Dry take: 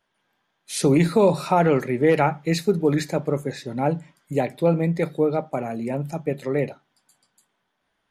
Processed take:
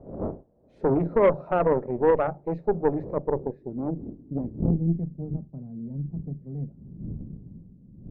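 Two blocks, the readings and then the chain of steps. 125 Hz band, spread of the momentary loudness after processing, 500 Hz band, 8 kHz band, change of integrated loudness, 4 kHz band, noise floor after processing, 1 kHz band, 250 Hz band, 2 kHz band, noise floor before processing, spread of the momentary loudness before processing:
-4.5 dB, 16 LU, -3.5 dB, under -40 dB, -4.5 dB, under -20 dB, -56 dBFS, -5.5 dB, -5.5 dB, -9.5 dB, -75 dBFS, 9 LU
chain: wind noise 360 Hz -34 dBFS; low-pass sweep 590 Hz -> 180 Hz, 2.88–5; added harmonics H 8 -19 dB, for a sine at 3.5 dBFS; gain -8 dB

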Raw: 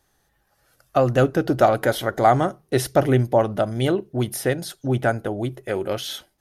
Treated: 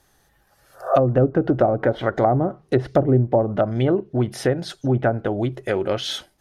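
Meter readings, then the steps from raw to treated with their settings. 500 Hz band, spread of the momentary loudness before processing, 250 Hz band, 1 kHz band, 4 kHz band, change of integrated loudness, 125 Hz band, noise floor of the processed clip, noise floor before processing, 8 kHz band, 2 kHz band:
+1.0 dB, 9 LU, +2.0 dB, -2.5 dB, 0.0 dB, +0.5 dB, +2.0 dB, -62 dBFS, -67 dBFS, n/a, -3.0 dB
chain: treble ducked by the level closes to 570 Hz, closed at -14 dBFS; spectral repair 0.71–0.93, 380–1800 Hz both; in parallel at -0.5 dB: compressor, threshold -29 dBFS, peak gain reduction 15 dB

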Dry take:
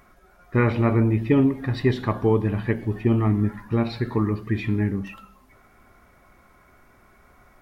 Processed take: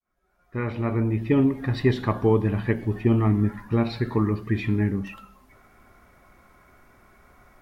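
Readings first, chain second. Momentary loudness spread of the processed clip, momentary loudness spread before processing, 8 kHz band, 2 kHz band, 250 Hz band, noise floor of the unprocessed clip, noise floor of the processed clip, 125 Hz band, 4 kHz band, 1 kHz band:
7 LU, 7 LU, n/a, -2.0 dB, -1.0 dB, -56 dBFS, -66 dBFS, -1.0 dB, -0.5 dB, -1.5 dB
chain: opening faded in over 1.67 s

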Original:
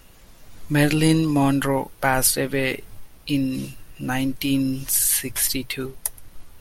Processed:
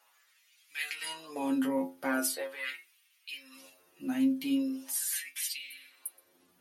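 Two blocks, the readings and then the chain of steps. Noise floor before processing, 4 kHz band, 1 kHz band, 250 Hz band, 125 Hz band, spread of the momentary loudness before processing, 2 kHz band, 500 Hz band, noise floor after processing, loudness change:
-48 dBFS, -11.5 dB, -14.5 dB, -10.0 dB, under -30 dB, 12 LU, -11.5 dB, -13.5 dB, -68 dBFS, -12.0 dB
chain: spectral repair 5.62–6.22, 230–8800 Hz both; LFO high-pass sine 0.41 Hz 210–2600 Hz; metallic resonator 87 Hz, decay 0.32 s, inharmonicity 0.002; gain -4.5 dB

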